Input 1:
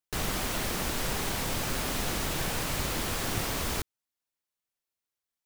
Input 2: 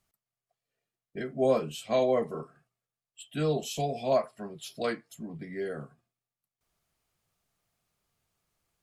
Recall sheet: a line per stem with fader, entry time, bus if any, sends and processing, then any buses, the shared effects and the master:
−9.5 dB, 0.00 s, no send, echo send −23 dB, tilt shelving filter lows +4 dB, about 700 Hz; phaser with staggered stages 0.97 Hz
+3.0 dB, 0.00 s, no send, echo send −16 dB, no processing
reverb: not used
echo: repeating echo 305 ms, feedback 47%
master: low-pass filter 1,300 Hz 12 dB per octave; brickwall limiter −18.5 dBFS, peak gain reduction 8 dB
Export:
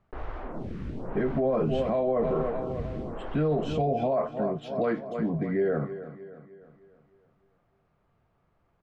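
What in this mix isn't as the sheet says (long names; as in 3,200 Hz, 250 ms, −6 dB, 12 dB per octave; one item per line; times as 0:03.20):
stem 1 −9.5 dB → −1.5 dB
stem 2 +3.0 dB → +12.5 dB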